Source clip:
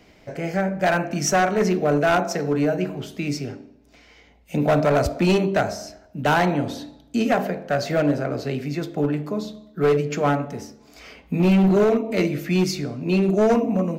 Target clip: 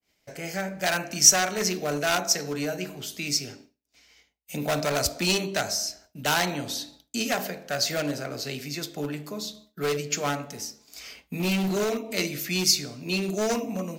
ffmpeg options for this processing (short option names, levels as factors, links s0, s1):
-af "crystalizer=i=7:c=0,adynamicequalizer=threshold=0.0251:dfrequency=5000:dqfactor=0.94:tfrequency=5000:tqfactor=0.94:attack=5:release=100:ratio=0.375:range=2.5:mode=boostabove:tftype=bell,agate=range=0.0224:threshold=0.0158:ratio=3:detection=peak,volume=0.316"